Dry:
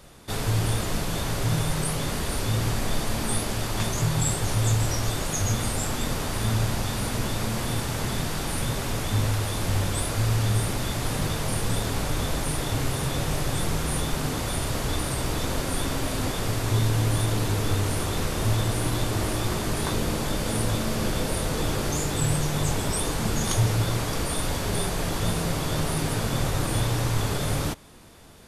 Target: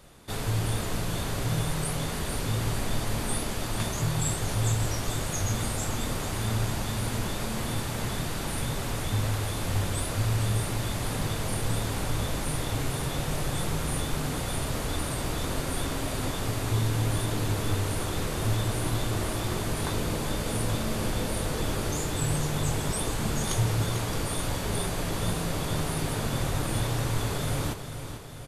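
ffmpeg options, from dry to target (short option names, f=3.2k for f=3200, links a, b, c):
-af "equalizer=f=5.4k:w=3.8:g=-2.5,aecho=1:1:445|890|1335|1780|2225|2670|3115:0.316|0.183|0.106|0.0617|0.0358|0.0208|0.012,volume=-3.5dB"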